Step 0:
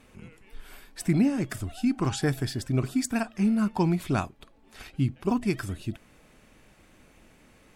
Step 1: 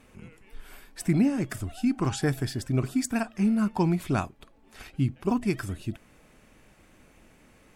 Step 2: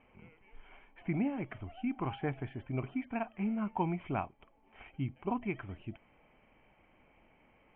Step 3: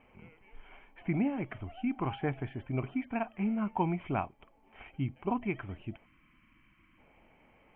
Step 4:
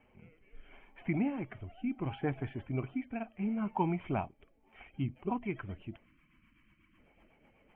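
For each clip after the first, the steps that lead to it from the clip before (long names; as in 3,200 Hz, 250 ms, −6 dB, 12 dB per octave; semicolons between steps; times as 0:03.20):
parametric band 3,900 Hz −2.5 dB
Chebyshev low-pass with heavy ripple 3,200 Hz, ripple 9 dB; level −2 dB
gain on a spectral selection 0:06.05–0:06.98, 350–950 Hz −20 dB; level +2.5 dB
spectral magnitudes quantised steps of 15 dB; rotating-speaker cabinet horn 0.7 Hz, later 8 Hz, at 0:04.43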